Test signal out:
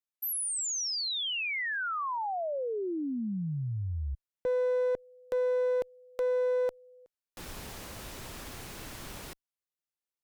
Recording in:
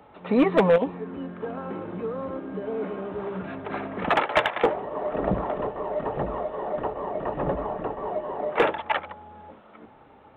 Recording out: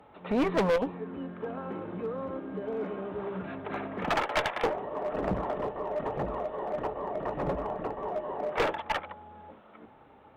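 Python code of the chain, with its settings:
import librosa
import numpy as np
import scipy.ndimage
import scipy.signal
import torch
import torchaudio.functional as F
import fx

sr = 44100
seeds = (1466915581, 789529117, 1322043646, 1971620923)

y = fx.clip_asym(x, sr, top_db=-23.5, bottom_db=-14.5)
y = F.gain(torch.from_numpy(y), -3.5).numpy()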